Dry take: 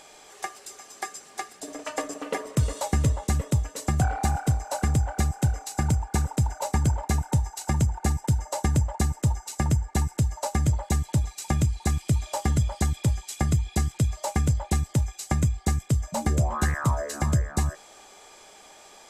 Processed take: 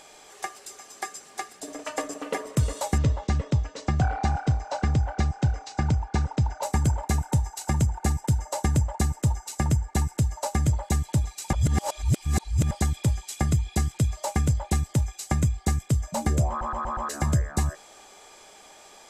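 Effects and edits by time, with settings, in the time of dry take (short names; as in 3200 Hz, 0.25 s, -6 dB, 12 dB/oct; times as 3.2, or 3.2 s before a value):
2.98–6.63 LPF 5600 Hz 24 dB/oct
11.53–12.71 reverse
16.49 stutter in place 0.12 s, 5 plays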